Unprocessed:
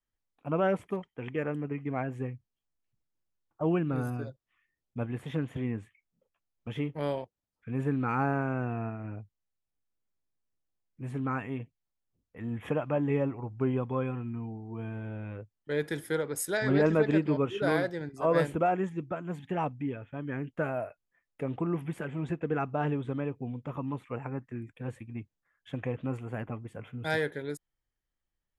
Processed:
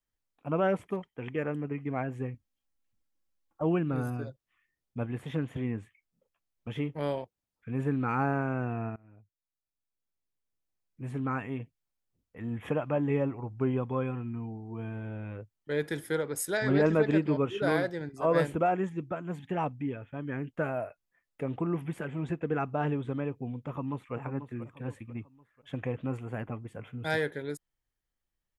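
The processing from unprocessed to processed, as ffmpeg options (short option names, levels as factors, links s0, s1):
-filter_complex "[0:a]asettb=1/sr,asplit=3[s0][s1][s2];[s0]atrim=end=2.344[s3];[s1]atrim=start=2.34:end=3.62,asetpts=PTS-STARTPTS,afade=t=in:d=0.004:c=qsin,afade=t=out:st=1.276:d=0.004:c=qsin,aecho=1:1:3.7:0.65,atrim=end_sample=56448[s4];[s2]atrim=start=3.616[s5];[s3][s4]acrossfade=d=0.004:c1=hsin:c2=qsin[s6];[s6][s5]acrossfade=d=0.004:c1=qsin:c2=hsin,asplit=2[s7][s8];[s8]afade=t=in:st=23.6:d=0.01,afade=t=out:st=24.14:d=0.01,aecho=0:1:490|980|1470|1960:0.316228|0.126491|0.0505964|0.0202386[s9];[s7][s9]amix=inputs=2:normalize=0,asplit=2[s10][s11];[s10]atrim=end=8.96,asetpts=PTS-STARTPTS,afade=t=out:st=8.956:d=0.004:c=hsin:silence=0.0707946[s12];[s11]atrim=start=8.96,asetpts=PTS-STARTPTS,afade=t=in:d=2.08:silence=0.0707946[s13];[s12][s13]concat=n=2:v=0:a=1"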